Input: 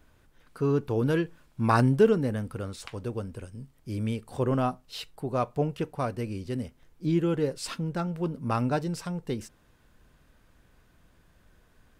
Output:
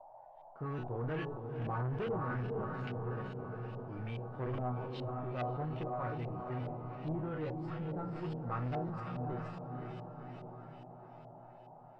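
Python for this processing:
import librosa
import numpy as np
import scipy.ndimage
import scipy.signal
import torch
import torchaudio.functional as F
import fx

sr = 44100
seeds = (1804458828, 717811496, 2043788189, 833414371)

y = fx.law_mismatch(x, sr, coded='A')
y = fx.peak_eq(y, sr, hz=130.0, db=4.5, octaves=0.47)
y = fx.resonator_bank(y, sr, root=47, chord='major', decay_s=0.24)
y = fx.echo_diffused(y, sr, ms=522, feedback_pct=56, wet_db=-6.0)
y = 10.0 ** (-37.5 / 20.0) * np.tanh(y / 10.0 ** (-37.5 / 20.0))
y = fx.filter_lfo_lowpass(y, sr, shape='saw_up', hz=2.4, low_hz=660.0, high_hz=3300.0, q=1.6)
y = fx.dmg_noise_band(y, sr, seeds[0], low_hz=570.0, high_hz=910.0, level_db=-61.0)
y = fx.sustainer(y, sr, db_per_s=36.0)
y = y * 10.0 ** (4.0 / 20.0)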